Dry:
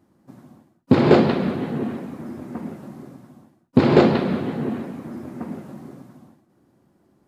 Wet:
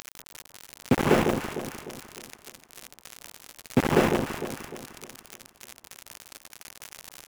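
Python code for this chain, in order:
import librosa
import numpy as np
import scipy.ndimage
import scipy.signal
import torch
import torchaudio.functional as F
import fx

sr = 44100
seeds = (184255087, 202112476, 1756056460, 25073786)

y = fx.delta_mod(x, sr, bps=16000, step_db=-12.0)
y = np.where(np.abs(y) >= 10.0 ** (-15.5 / 20.0), y, 0.0)
y = fx.echo_alternate(y, sr, ms=151, hz=960.0, feedback_pct=66, wet_db=-6.0)
y = y * librosa.db_to_amplitude(-7.0)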